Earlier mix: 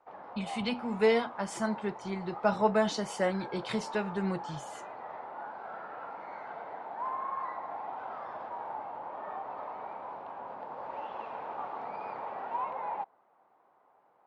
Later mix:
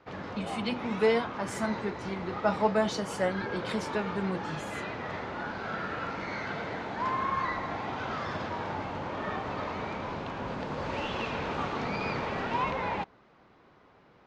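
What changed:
background: remove resonant band-pass 810 Hz, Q 2.7
master: remove Butterworth low-pass 11,000 Hz

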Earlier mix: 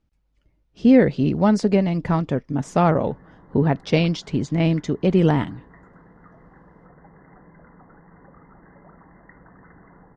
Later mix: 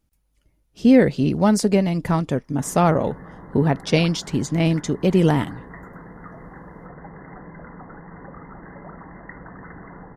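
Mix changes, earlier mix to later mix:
background +9.0 dB
master: remove high-frequency loss of the air 130 metres

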